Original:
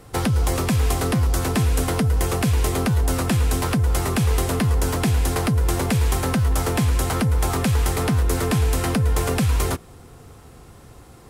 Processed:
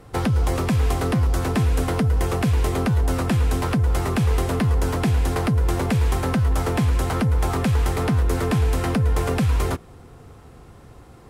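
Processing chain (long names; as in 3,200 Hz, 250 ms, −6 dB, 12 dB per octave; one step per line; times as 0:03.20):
high-shelf EQ 4,200 Hz −9 dB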